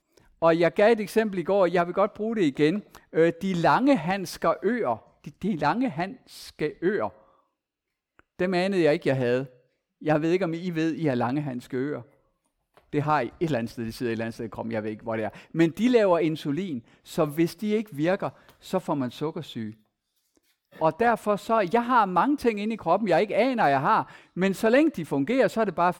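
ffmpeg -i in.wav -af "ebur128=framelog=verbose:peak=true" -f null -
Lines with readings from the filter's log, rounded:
Integrated loudness:
  I:         -25.2 LUFS
  Threshold: -35.7 LUFS
Loudness range:
  LRA:         6.6 LU
  Threshold: -46.3 LUFS
  LRA low:   -30.0 LUFS
  LRA high:  -23.4 LUFS
True peak:
  Peak:       -8.6 dBFS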